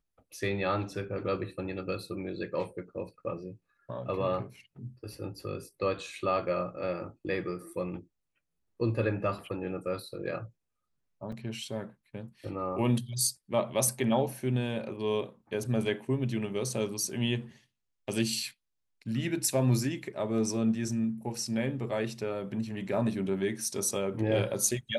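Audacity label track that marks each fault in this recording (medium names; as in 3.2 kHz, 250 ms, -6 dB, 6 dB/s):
11.320000	11.320000	dropout 4.5 ms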